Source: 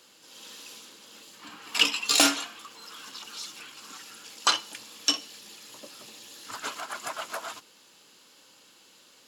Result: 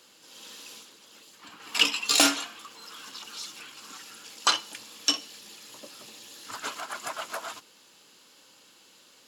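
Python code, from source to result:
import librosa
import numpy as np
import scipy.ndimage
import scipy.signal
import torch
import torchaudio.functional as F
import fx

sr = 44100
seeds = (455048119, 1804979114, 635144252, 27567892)

y = fx.hpss(x, sr, part='harmonic', gain_db=-8, at=(0.83, 1.6))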